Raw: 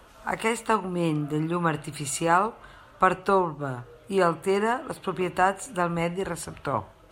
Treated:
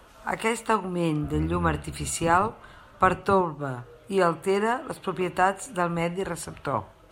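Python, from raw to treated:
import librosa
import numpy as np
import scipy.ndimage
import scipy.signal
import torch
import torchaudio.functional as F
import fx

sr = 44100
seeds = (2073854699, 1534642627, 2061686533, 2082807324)

y = fx.octave_divider(x, sr, octaves=1, level_db=-3.0, at=(1.23, 3.41))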